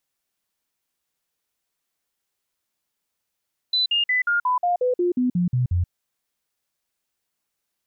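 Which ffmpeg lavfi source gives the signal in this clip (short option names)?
-f lavfi -i "aevalsrc='0.133*clip(min(mod(t,0.18),0.13-mod(t,0.18))/0.005,0,1)*sin(2*PI*4000*pow(2,-floor(t/0.18)/2)*mod(t,0.18))':d=2.16:s=44100"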